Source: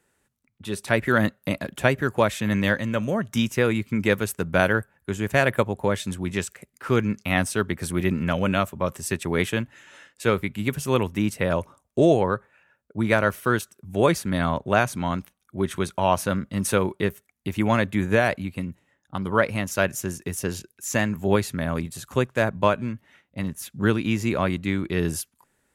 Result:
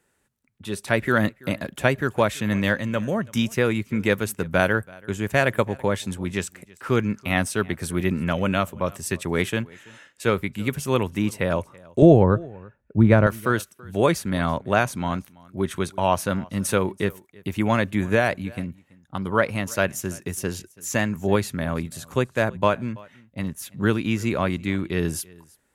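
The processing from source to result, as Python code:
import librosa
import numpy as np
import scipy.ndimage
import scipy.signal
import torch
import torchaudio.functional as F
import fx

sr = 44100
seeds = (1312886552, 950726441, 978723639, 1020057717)

y = fx.tilt_eq(x, sr, slope=-3.5, at=(12.02, 13.27))
y = y + 10.0 ** (-24.0 / 20.0) * np.pad(y, (int(331 * sr / 1000.0), 0))[:len(y)]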